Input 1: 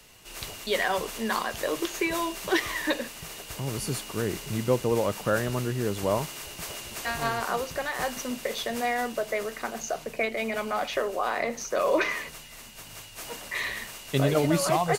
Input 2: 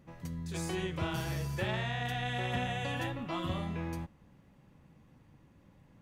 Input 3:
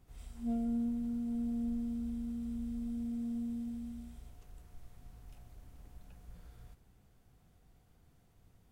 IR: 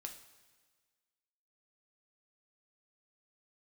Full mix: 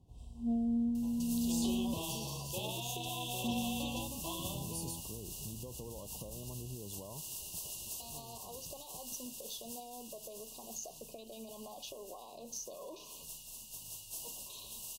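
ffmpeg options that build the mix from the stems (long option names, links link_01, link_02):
-filter_complex "[0:a]highshelf=frequency=5000:gain=8.5,alimiter=limit=-20dB:level=0:latency=1:release=56,acompressor=threshold=-31dB:ratio=6,adelay=950,volume=-13.5dB[link_01];[1:a]lowpass=5500,aemphasis=mode=production:type=bsi,adelay=950,volume=-5dB[link_02];[2:a]highpass=61,aemphasis=mode=reproduction:type=75kf,volume=-1dB,asplit=3[link_03][link_04][link_05];[link_03]atrim=end=1.94,asetpts=PTS-STARTPTS,afade=type=out:start_time=1.936:duration=0.004:curve=hsin[link_06];[link_04]atrim=start=1.94:end=3.44,asetpts=PTS-STARTPTS,volume=0[link_07];[link_05]atrim=start=3.44,asetpts=PTS-STARTPTS,afade=type=in:duration=0.004:curve=hsin[link_08];[link_06][link_07][link_08]concat=n=3:v=0:a=1[link_09];[link_01][link_02][link_09]amix=inputs=3:normalize=0,asuperstop=centerf=1700:order=20:qfactor=1.1,bass=frequency=250:gain=5,treble=frequency=4000:gain=7"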